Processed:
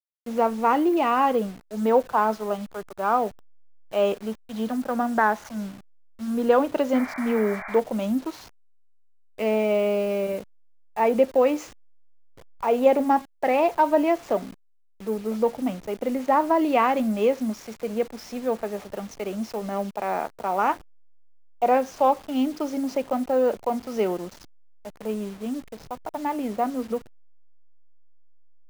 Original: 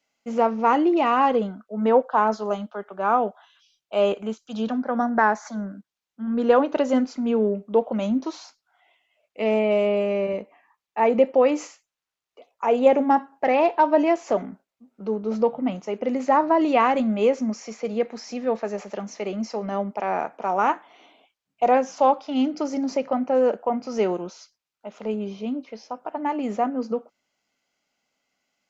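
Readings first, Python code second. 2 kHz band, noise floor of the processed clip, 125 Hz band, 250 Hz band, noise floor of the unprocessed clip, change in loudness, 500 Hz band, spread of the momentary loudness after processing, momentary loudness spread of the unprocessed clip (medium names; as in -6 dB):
-1.0 dB, -55 dBFS, no reading, -1.5 dB, under -85 dBFS, -1.5 dB, -1.5 dB, 12 LU, 12 LU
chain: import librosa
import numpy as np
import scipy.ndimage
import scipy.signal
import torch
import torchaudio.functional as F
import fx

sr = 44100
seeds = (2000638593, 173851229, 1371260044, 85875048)

y = fx.delta_hold(x, sr, step_db=-38.0)
y = fx.spec_paint(y, sr, seeds[0], shape='noise', start_s=6.94, length_s=0.86, low_hz=570.0, high_hz=2400.0, level_db=-35.0)
y = F.gain(torch.from_numpy(y), -1.5).numpy()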